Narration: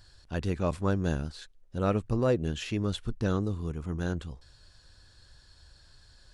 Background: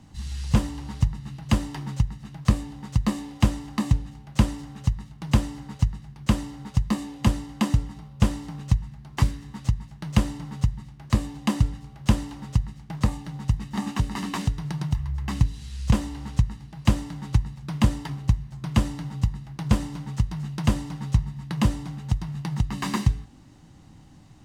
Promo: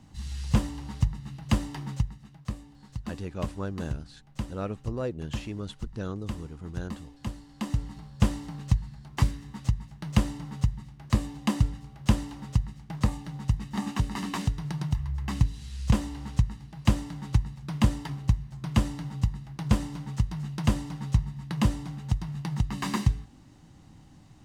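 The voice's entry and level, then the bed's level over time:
2.75 s, −6.0 dB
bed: 0:01.93 −3 dB
0:02.48 −14 dB
0:07.44 −14 dB
0:07.92 −2.5 dB

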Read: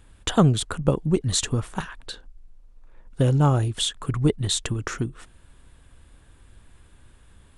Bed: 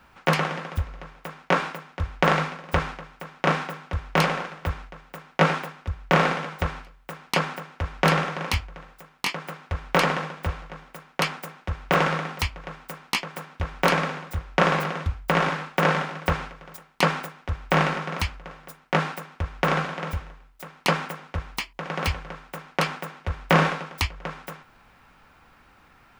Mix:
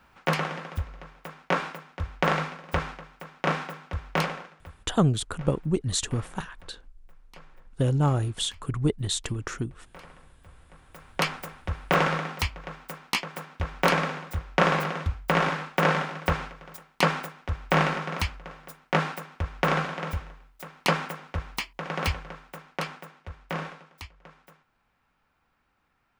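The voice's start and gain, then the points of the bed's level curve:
4.60 s, −4.0 dB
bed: 0:04.15 −4 dB
0:05.03 −27.5 dB
0:10.41 −27.5 dB
0:11.08 −1.5 dB
0:22.09 −1.5 dB
0:23.86 −17 dB

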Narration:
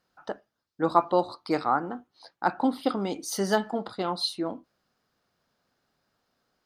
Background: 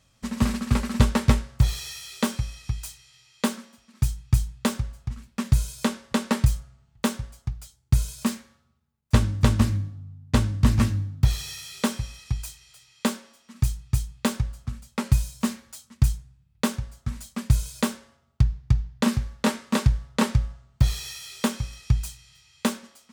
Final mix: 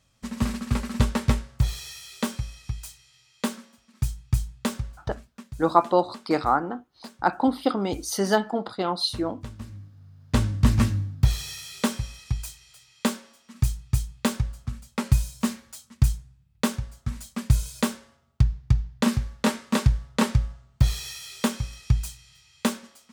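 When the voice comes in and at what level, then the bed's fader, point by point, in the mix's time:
4.80 s, +3.0 dB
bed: 0:05.20 −3 dB
0:05.48 −19.5 dB
0:09.58 −19.5 dB
0:10.42 0 dB

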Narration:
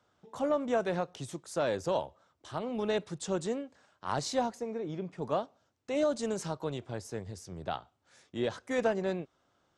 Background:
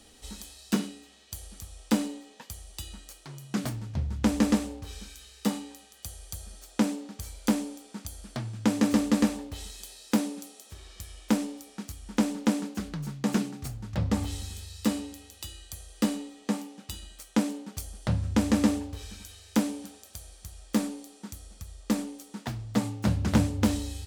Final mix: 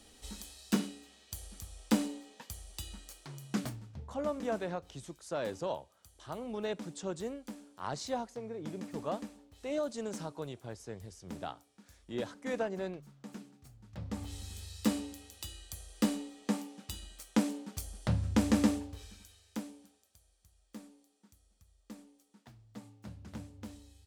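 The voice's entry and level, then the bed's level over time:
3.75 s, −5.5 dB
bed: 0:03.55 −3.5 dB
0:04.16 −20.5 dB
0:13.65 −20.5 dB
0:14.66 −3.5 dB
0:18.60 −3.5 dB
0:20.20 −22 dB

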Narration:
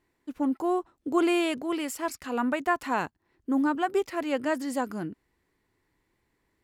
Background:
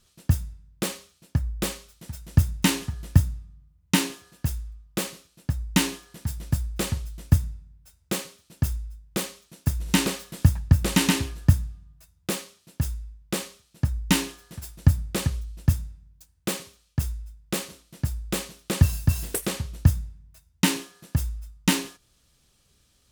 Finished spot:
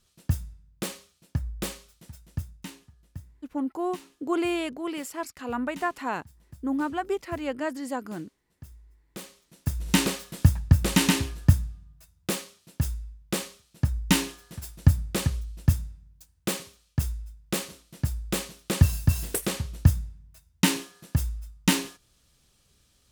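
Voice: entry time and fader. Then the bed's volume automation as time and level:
3.15 s, −2.5 dB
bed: 0:01.94 −4.5 dB
0:02.84 −23.5 dB
0:08.53 −23.5 dB
0:09.89 −0.5 dB

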